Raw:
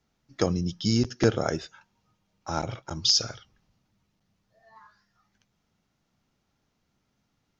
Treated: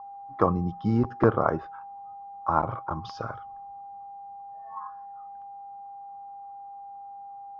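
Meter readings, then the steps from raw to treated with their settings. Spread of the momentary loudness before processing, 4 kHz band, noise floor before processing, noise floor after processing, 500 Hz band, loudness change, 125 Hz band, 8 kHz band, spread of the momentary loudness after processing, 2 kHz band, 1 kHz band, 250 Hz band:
15 LU, -24.5 dB, -76 dBFS, -43 dBFS, +2.0 dB, -1.5 dB, 0.0 dB, n/a, 18 LU, -0.5 dB, +10.0 dB, +0.5 dB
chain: whine 800 Hz -46 dBFS; synth low-pass 1100 Hz, resonance Q 7.6

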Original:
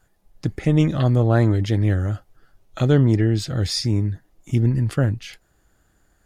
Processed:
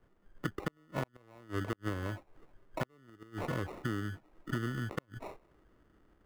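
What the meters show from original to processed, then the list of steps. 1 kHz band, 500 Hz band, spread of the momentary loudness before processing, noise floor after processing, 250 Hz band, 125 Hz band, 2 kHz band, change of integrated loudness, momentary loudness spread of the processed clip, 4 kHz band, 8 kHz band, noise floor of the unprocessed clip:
-9.0 dB, -16.5 dB, 13 LU, -70 dBFS, -18.5 dB, -22.0 dB, -8.0 dB, -19.5 dB, 11 LU, -20.0 dB, -19.5 dB, -64 dBFS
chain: high shelf 2600 Hz -8.5 dB; low-pass opened by the level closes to 410 Hz, open at -16 dBFS; sample-rate reducer 1600 Hz, jitter 0%; three-band isolator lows -12 dB, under 260 Hz, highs -12 dB, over 2300 Hz; flipped gate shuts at -14 dBFS, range -40 dB; compressor 6:1, threshold -40 dBFS, peak gain reduction 17.5 dB; gain +6.5 dB

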